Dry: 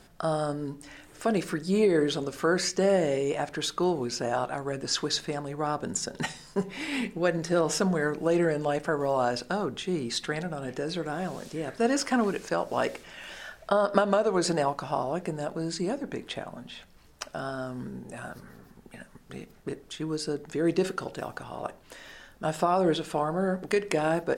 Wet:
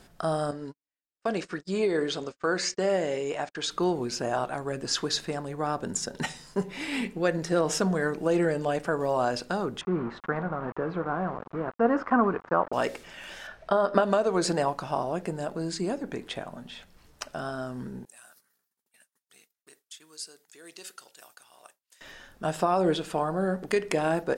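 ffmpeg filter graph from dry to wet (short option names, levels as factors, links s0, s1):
-filter_complex "[0:a]asettb=1/sr,asplit=3[s0][s1][s2];[s0]atrim=end=0.514[s3];[s1]atrim=start=0.51:end=3.71,asetpts=PTS-STARTPTS,afade=t=in:d=0.004:c=qsin,afade=t=out:st=3.196:d=0.004:c=qsin,lowpass=f=7900:w=0.5412,lowpass=f=7900:w=1.3066,lowshelf=f=320:g=-8,agate=range=0.00251:threshold=0.01:ratio=16:release=100:detection=peak[s4];[s2]atrim=start=3.706[s5];[s3][s4]acrossfade=d=0.004:c1=hsin:c2=qsin[s6];[s6][s5]acrossfade=d=0.004:c1=qsin:c2=hsin,asettb=1/sr,asplit=3[s7][s8][s9];[s7]atrim=end=9.814[s10];[s8]atrim=start=9.81:end=12.73,asetpts=PTS-STARTPTS,afade=t=in:d=0.004:c=qsin,afade=t=out:st=2.916:d=0.004:c=qsin,equalizer=f=170:w=1.5:g=2,aeval=exprs='val(0)*gte(abs(val(0)),0.015)':c=same,lowpass=f=1200:t=q:w=2.8[s11];[s9]atrim=start=12.726[s12];[s10][s11]acrossfade=d=0.004:c1=hsin:c2=qsin[s13];[s13][s12]acrossfade=d=0.004:c1=qsin:c2=hsin,asettb=1/sr,asplit=3[s14][s15][s16];[s14]atrim=end=13.474[s17];[s15]atrim=start=13.47:end=14.03,asetpts=PTS-STARTPTS,afade=t=in:d=0.004:c=qsin,afade=t=out:st=0.556:d=0.004:c=qsin,aemphasis=mode=reproduction:type=50fm,bandreject=f=7100:w=13,asplit=2[s18][s19];[s19]adelay=22,volume=0.2[s20];[s18][s20]amix=inputs=2:normalize=0,atrim=end_sample=24696[s21];[s16]atrim=start=14.026[s22];[s17][s21]acrossfade=d=0.004:c1=hsin:c2=qsin[s23];[s23][s22]acrossfade=d=0.004:c1=qsin:c2=hsin,asettb=1/sr,asplit=3[s24][s25][s26];[s24]atrim=end=18.054[s27];[s25]atrim=start=18.05:end=22.01,asetpts=PTS-STARTPTS,afade=t=in:d=0.004:c=qsin,afade=t=out:st=3.956:d=0.004:c=qsin,agate=range=0.0224:threshold=0.00794:ratio=3:release=100:detection=peak,aderivative[s28];[s26]atrim=start=22.006[s29];[s27][s28]acrossfade=d=0.004:c1=hsin:c2=qsin[s30];[s30][s29]acrossfade=d=0.004:c1=qsin:c2=hsin"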